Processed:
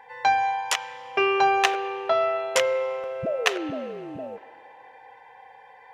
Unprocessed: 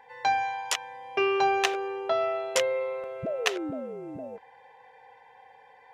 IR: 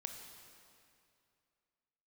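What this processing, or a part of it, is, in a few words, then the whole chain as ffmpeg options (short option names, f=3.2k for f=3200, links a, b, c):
filtered reverb send: -filter_complex "[0:a]asplit=2[a][b];[b]highpass=550,lowpass=3.1k[c];[1:a]atrim=start_sample=2205[d];[c][d]afir=irnorm=-1:irlink=0,volume=-3dB[e];[a][e]amix=inputs=2:normalize=0,volume=2.5dB"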